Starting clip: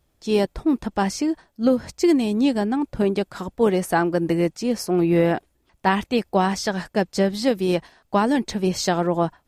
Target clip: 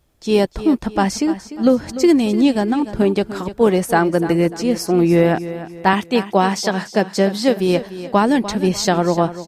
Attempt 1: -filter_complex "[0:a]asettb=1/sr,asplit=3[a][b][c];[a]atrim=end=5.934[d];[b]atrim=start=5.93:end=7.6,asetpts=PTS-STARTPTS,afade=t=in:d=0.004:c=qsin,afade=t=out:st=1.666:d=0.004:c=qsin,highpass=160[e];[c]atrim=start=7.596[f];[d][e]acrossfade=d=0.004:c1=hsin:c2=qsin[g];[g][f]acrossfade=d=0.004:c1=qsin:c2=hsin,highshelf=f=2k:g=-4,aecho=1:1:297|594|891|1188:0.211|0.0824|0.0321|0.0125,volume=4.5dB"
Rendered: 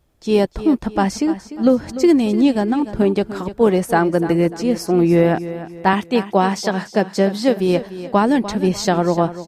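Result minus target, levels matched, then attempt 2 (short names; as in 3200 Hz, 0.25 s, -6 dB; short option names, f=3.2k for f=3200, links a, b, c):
4000 Hz band -3.0 dB
-filter_complex "[0:a]asettb=1/sr,asplit=3[a][b][c];[a]atrim=end=5.934[d];[b]atrim=start=5.93:end=7.6,asetpts=PTS-STARTPTS,afade=t=in:d=0.004:c=qsin,afade=t=out:st=1.666:d=0.004:c=qsin,highpass=160[e];[c]atrim=start=7.596[f];[d][e]acrossfade=d=0.004:c1=hsin:c2=qsin[g];[g][f]acrossfade=d=0.004:c1=qsin:c2=hsin,aecho=1:1:297|594|891|1188:0.211|0.0824|0.0321|0.0125,volume=4.5dB"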